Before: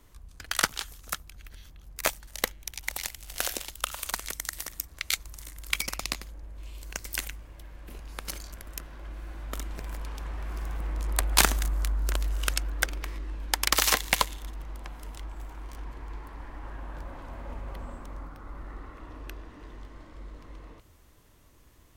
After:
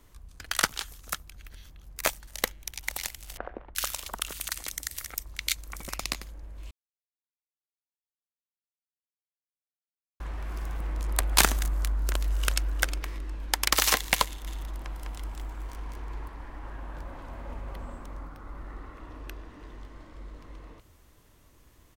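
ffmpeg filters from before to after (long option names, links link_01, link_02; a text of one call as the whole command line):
ffmpeg -i in.wav -filter_complex "[0:a]asettb=1/sr,asplit=3[link_01][link_02][link_03];[link_01]atrim=end=3.374[link_04];[link_02]atrim=start=3.37:end=5.89,asetpts=PTS-STARTPTS,afade=type=in:duration=0.004:curve=qsin,afade=type=out:start_time=2.516:duration=0.004:curve=qsin,acrossover=split=1400[link_05][link_06];[link_06]adelay=380[link_07];[link_05][link_07]amix=inputs=2:normalize=0,atrim=end_sample=111132[link_08];[link_03]atrim=start=5.886[link_09];[link_04][link_08]acrossfade=duration=0.004:curve1=hsin:curve2=qsin[link_10];[link_10][link_09]acrossfade=duration=0.004:curve1=qsin:curve2=hsin,asplit=2[link_11][link_12];[link_12]afade=type=in:start_time=11.91:duration=0.01,afade=type=out:start_time=12.63:duration=0.01,aecho=0:1:360|720:0.266073|0.0266073[link_13];[link_11][link_13]amix=inputs=2:normalize=0,asettb=1/sr,asplit=3[link_14][link_15][link_16];[link_14]atrim=end=14.264[link_17];[link_15]atrim=start=14.26:end=16.28,asetpts=PTS-STARTPTS,afade=type=in:duration=0.004:curve=qsin,afade=type=out:start_time=2.016:duration=0.004:curve=qsin,aecho=1:1:203:0.708,atrim=end_sample=89082[link_18];[link_16]atrim=start=16.276[link_19];[link_17][link_18]acrossfade=duration=0.004:curve1=hsin:curve2=qsin[link_20];[link_20][link_19]acrossfade=duration=0.004:curve1=qsin:curve2=hsin,asplit=3[link_21][link_22][link_23];[link_21]atrim=end=6.71,asetpts=PTS-STARTPTS,afade=type=out:start_time=6.706:duration=0.004:curve=hsin[link_24];[link_22]atrim=start=6.71:end=10.2,asetpts=PTS-STARTPTS,volume=0[link_25];[link_23]atrim=start=10.2,asetpts=PTS-STARTPTS,afade=type=in:duration=0.004:curve=hsin[link_26];[link_24][link_25][link_26]concat=n=3:v=0:a=1" out.wav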